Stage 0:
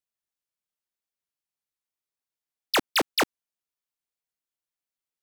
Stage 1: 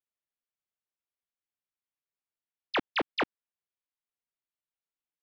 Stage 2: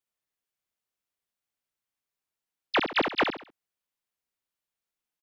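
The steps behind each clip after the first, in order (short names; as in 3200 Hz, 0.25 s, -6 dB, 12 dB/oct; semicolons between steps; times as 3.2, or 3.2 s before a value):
LPF 3400 Hz 24 dB/oct; gain -5 dB
feedback echo 67 ms, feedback 33%, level -6 dB; gain +4 dB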